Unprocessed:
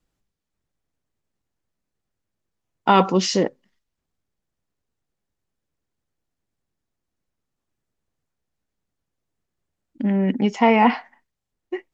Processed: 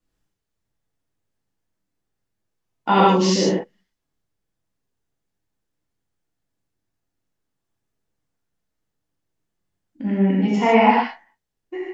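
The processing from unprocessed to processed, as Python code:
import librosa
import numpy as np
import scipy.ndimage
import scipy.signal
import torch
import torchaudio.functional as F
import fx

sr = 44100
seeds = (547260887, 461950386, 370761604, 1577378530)

y = fx.rev_gated(x, sr, seeds[0], gate_ms=180, shape='flat', drr_db=-7.0)
y = y * 10.0 ** (-6.5 / 20.0)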